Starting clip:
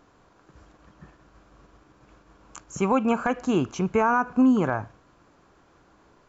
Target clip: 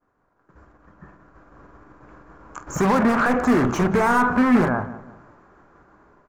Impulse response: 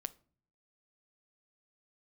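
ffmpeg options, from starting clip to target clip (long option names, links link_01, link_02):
-filter_complex "[0:a]alimiter=limit=-20.5dB:level=0:latency=1:release=70,asplit=2[link_01][link_02];[link_02]adelay=48,volume=-13dB[link_03];[link_01][link_03]amix=inputs=2:normalize=0,asplit=3[link_04][link_05][link_06];[link_04]afade=type=out:start_time=2.66:duration=0.02[link_07];[link_05]aeval=exprs='0.0631*(cos(1*acos(clip(val(0)/0.0631,-1,1)))-cos(1*PI/2))+0.0316*(cos(5*acos(clip(val(0)/0.0631,-1,1)))-cos(5*PI/2))':channel_layout=same,afade=type=in:start_time=2.66:duration=0.02,afade=type=out:start_time=4.67:duration=0.02[link_08];[link_06]afade=type=in:start_time=4.67:duration=0.02[link_09];[link_07][link_08][link_09]amix=inputs=3:normalize=0,asplit=2[link_10][link_11];[link_11]adelay=178,lowpass=frequency=1800:poles=1,volume=-15dB,asplit=2[link_12][link_13];[link_13]adelay=178,lowpass=frequency=1800:poles=1,volume=0.37,asplit=2[link_14][link_15];[link_15]adelay=178,lowpass=frequency=1800:poles=1,volume=0.37[link_16];[link_10][link_12][link_14][link_16]amix=inputs=4:normalize=0,dynaudnorm=framelen=400:gausssize=7:maxgain=6dB,agate=range=-33dB:threshold=-49dB:ratio=3:detection=peak,highshelf=frequency=2300:width_type=q:width=1.5:gain=-10.5,bandreject=frequency=46.36:width_type=h:width=4,bandreject=frequency=92.72:width_type=h:width=4,bandreject=frequency=139.08:width_type=h:width=4,bandreject=frequency=185.44:width_type=h:width=4[link_17];[1:a]atrim=start_sample=2205,asetrate=61740,aresample=44100[link_18];[link_17][link_18]afir=irnorm=-1:irlink=0,volume=7dB"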